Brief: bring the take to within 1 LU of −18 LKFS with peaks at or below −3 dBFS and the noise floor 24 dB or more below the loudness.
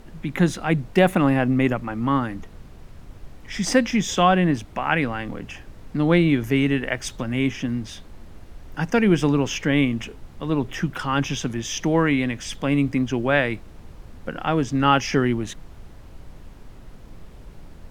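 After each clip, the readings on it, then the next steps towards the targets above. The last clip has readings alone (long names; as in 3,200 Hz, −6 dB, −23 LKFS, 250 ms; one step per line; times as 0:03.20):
background noise floor −44 dBFS; target noise floor −46 dBFS; integrated loudness −22.0 LKFS; sample peak −4.0 dBFS; target loudness −18.0 LKFS
→ noise reduction from a noise print 6 dB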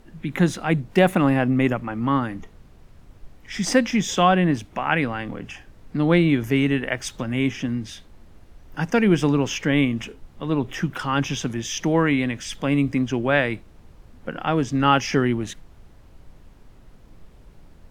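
background noise floor −50 dBFS; integrated loudness −22.0 LKFS; sample peak −4.0 dBFS; target loudness −18.0 LKFS
→ level +4 dB
brickwall limiter −3 dBFS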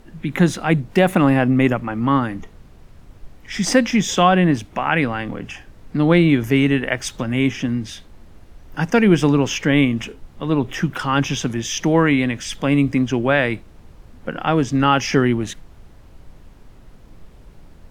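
integrated loudness −18.5 LKFS; sample peak −3.0 dBFS; background noise floor −46 dBFS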